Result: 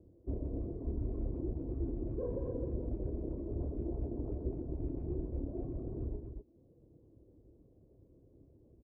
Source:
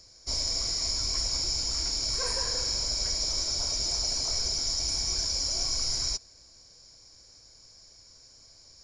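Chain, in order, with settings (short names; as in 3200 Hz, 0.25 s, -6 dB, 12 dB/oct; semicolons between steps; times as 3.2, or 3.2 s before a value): rattling part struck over -36 dBFS, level -23 dBFS; HPF 47 Hz; reverb removal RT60 0.81 s; ladder low-pass 410 Hz, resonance 50%; loudspeakers at several distances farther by 10 m -5 dB, 44 m -9 dB, 86 m -6 dB; gain +13.5 dB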